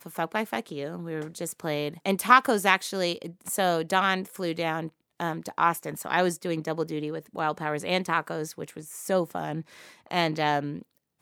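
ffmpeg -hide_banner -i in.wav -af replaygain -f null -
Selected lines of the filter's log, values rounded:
track_gain = +7.2 dB
track_peak = 0.509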